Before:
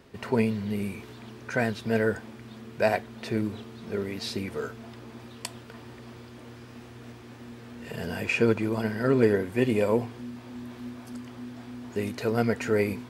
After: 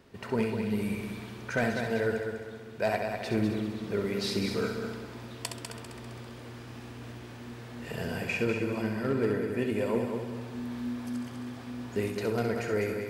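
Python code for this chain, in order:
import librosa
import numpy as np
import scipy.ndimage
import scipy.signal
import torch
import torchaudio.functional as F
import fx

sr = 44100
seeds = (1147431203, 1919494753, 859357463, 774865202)

y = fx.rider(x, sr, range_db=4, speed_s=0.5)
y = fx.echo_heads(y, sr, ms=66, heads='first and third', feedback_pct=56, wet_db=-7)
y = np.clip(y, -10.0 ** (-15.0 / 20.0), 10.0 ** (-15.0 / 20.0))
y = F.gain(torch.from_numpy(y), -4.0).numpy()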